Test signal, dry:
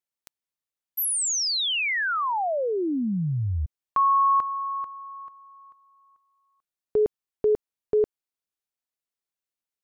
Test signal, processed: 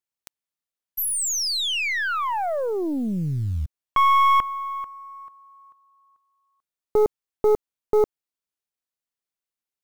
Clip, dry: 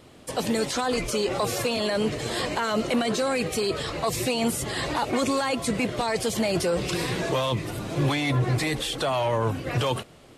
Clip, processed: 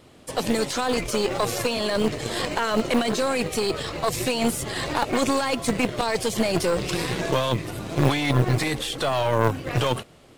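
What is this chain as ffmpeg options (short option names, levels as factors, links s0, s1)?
-af "acrusher=bits=9:mode=log:mix=0:aa=0.000001,aeval=exprs='0.224*(cos(1*acos(clip(val(0)/0.224,-1,1)))-cos(1*PI/2))+0.0447*(cos(2*acos(clip(val(0)/0.224,-1,1)))-cos(2*PI/2))+0.0398*(cos(3*acos(clip(val(0)/0.224,-1,1)))-cos(3*PI/2))+0.00562*(cos(5*acos(clip(val(0)/0.224,-1,1)))-cos(5*PI/2))+0.00355*(cos(7*acos(clip(val(0)/0.224,-1,1)))-cos(7*PI/2))':c=same,volume=1.88"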